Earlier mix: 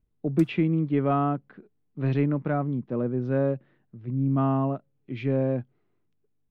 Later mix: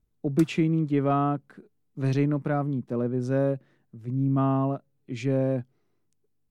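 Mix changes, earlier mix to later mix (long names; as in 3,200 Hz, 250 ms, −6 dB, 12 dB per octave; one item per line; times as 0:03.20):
speech: remove low-pass filter 3,400 Hz 24 dB per octave
background +7.0 dB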